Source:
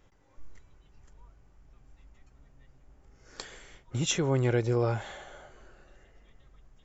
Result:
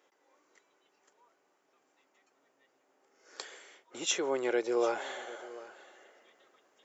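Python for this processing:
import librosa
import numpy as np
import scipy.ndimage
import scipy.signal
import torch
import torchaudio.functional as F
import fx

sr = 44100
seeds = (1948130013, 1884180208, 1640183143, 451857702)

y = scipy.signal.sosfilt(scipy.signal.butter(4, 340.0, 'highpass', fs=sr, output='sos'), x)
y = fx.rider(y, sr, range_db=10, speed_s=0.5)
y = y + 10.0 ** (-18.5 / 20.0) * np.pad(y, (int(743 * sr / 1000.0), 0))[:len(y)]
y = y * librosa.db_to_amplitude(2.0)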